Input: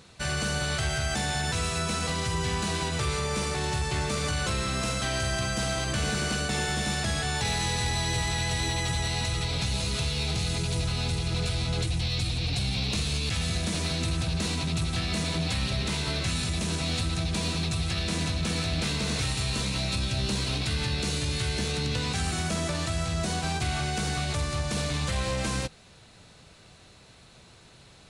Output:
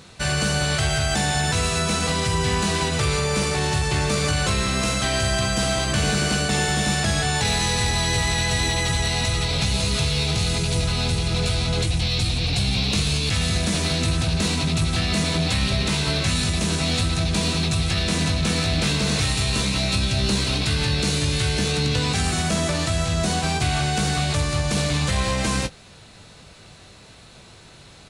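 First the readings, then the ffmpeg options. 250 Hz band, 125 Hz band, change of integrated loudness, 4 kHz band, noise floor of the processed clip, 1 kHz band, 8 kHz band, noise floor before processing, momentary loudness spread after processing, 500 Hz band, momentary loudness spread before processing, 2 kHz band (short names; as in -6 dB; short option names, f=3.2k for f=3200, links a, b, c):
+7.5 dB, +6.5 dB, +6.5 dB, +7.0 dB, -46 dBFS, +6.5 dB, +7.0 dB, -53 dBFS, 2 LU, +7.0 dB, 1 LU, +6.5 dB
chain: -filter_complex "[0:a]asplit=2[a][b];[b]adelay=20,volume=-10.5dB[c];[a][c]amix=inputs=2:normalize=0,volume=6.5dB"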